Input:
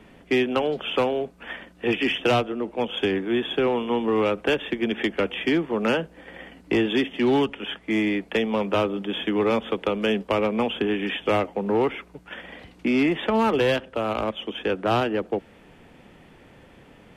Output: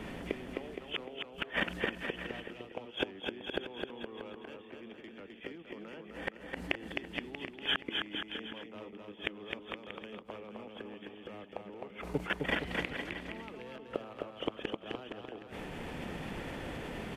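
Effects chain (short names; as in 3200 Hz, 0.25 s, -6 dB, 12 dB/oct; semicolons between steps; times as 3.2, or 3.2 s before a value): level quantiser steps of 14 dB; flipped gate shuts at -31 dBFS, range -33 dB; bouncing-ball echo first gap 0.26 s, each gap 0.8×, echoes 5; gain +13 dB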